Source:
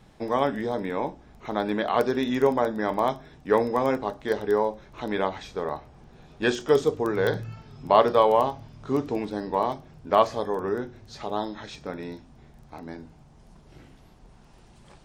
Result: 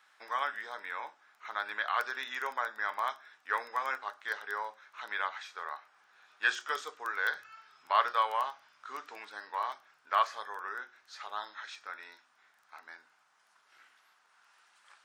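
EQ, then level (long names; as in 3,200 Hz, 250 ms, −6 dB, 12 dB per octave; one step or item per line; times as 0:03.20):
high-pass with resonance 1,400 Hz, resonance Q 2.8
−6.0 dB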